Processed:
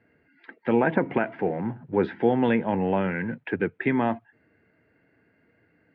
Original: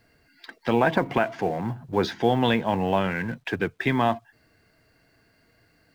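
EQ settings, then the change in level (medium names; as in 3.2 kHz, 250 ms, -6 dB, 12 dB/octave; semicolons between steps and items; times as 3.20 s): cabinet simulation 120–2200 Hz, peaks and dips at 130 Hz -5 dB, 690 Hz -7 dB, 1.1 kHz -9 dB; peaking EQ 1.6 kHz -2.5 dB 0.77 oct; +2.0 dB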